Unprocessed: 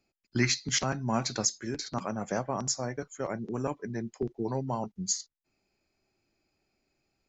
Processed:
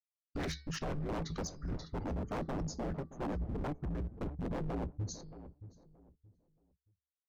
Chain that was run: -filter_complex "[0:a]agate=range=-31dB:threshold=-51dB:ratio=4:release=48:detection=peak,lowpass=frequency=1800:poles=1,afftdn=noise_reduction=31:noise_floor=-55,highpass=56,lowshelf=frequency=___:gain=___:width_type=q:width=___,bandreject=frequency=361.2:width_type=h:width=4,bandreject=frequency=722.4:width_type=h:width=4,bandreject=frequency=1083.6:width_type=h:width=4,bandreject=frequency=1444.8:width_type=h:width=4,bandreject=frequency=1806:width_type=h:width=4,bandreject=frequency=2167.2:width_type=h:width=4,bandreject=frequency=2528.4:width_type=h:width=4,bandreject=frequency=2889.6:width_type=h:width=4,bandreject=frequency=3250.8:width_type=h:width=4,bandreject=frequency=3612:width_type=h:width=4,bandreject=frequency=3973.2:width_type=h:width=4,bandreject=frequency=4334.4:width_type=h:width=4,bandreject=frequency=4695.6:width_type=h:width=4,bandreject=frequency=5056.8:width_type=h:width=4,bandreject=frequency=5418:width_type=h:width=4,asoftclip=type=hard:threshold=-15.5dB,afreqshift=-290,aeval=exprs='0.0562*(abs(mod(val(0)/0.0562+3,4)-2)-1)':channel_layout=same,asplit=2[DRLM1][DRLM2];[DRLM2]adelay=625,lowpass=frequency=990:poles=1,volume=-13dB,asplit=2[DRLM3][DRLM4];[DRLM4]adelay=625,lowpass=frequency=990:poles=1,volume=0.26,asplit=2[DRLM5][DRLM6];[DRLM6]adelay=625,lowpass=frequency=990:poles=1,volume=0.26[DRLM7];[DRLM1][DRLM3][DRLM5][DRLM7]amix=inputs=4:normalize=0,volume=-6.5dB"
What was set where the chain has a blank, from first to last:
700, 7, 3